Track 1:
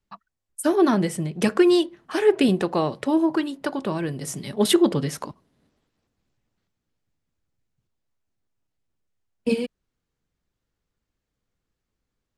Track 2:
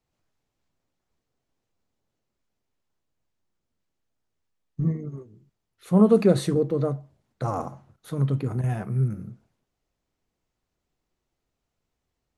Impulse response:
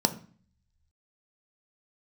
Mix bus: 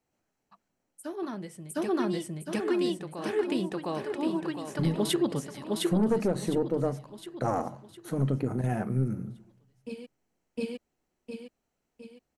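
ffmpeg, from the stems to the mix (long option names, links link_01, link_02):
-filter_complex "[0:a]adelay=400,volume=-4dB,asplit=2[link_01][link_02];[link_02]volume=-6.5dB[link_03];[1:a]lowshelf=frequency=63:gain=-9.5,bandreject=frequency=3600:width=5,aeval=exprs='(tanh(5.01*val(0)+0.5)-tanh(0.5))/5.01':channel_layout=same,volume=2dB,asplit=3[link_04][link_05][link_06];[link_05]volume=-21.5dB[link_07];[link_06]apad=whole_len=563417[link_08];[link_01][link_08]sidechaingate=range=-13dB:threshold=-54dB:ratio=16:detection=peak[link_09];[2:a]atrim=start_sample=2205[link_10];[link_07][link_10]afir=irnorm=-1:irlink=0[link_11];[link_03]aecho=0:1:709|1418|2127|2836|3545|4254:1|0.43|0.185|0.0795|0.0342|0.0147[link_12];[link_09][link_04][link_11][link_12]amix=inputs=4:normalize=0,alimiter=limit=-17dB:level=0:latency=1:release=377"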